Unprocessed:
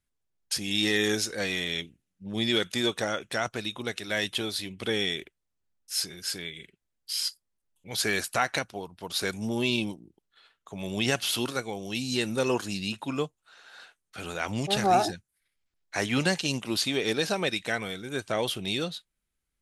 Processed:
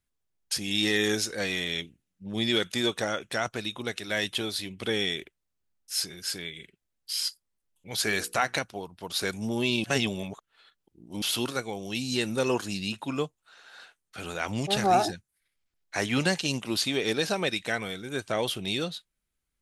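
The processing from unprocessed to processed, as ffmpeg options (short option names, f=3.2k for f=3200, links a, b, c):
-filter_complex "[0:a]asettb=1/sr,asplit=3[a][b][c];[a]atrim=end=8.044[d];[b]atrim=start=8.04:end=8.54,asetpts=PTS-STARTPTS,afade=t=in:d=0.004:c=qsin,afade=t=out:st=0.496:d=0.004:c=qsin,bandreject=f=60:t=h:w=6,bandreject=f=120:t=h:w=6,bandreject=f=180:t=h:w=6,bandreject=f=240:t=h:w=6,bandreject=f=300:t=h:w=6,bandreject=f=360:t=h:w=6,bandreject=f=420:t=h:w=6,bandreject=f=480:t=h:w=6[e];[c]atrim=start=8.536[f];[d][e]acrossfade=d=0.004:c1=hsin:c2=qsin[g];[g][f]acrossfade=d=0.004:c1=qsin:c2=hsin,asplit=3[h][i][j];[h]atrim=end=9.842[k];[i]atrim=start=9.838:end=11.222,asetpts=PTS-STARTPTS,areverse[l];[j]atrim=start=11.218[m];[k][l]acrossfade=d=0.004:c1=hsin:c2=hsin[n];[n][m]acrossfade=d=0.004:c1=hsin:c2=hsin"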